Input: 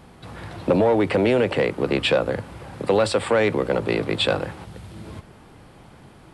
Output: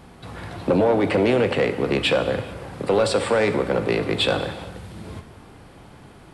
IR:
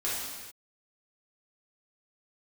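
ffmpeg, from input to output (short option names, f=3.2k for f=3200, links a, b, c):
-filter_complex "[0:a]asoftclip=type=tanh:threshold=-12dB,asplit=2[a][b];[1:a]atrim=start_sample=2205[c];[b][c]afir=irnorm=-1:irlink=0,volume=-14dB[d];[a][d]amix=inputs=2:normalize=0"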